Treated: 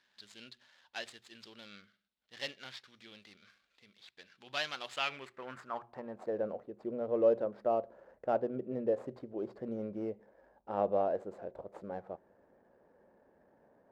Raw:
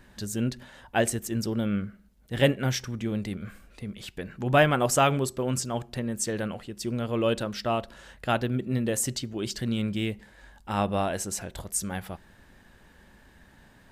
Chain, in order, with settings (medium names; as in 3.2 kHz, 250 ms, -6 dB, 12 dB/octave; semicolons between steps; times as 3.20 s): median filter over 15 samples; band-pass sweep 3.6 kHz -> 530 Hz, 4.85–6.41 s; hum notches 60/120 Hz; trim +1.5 dB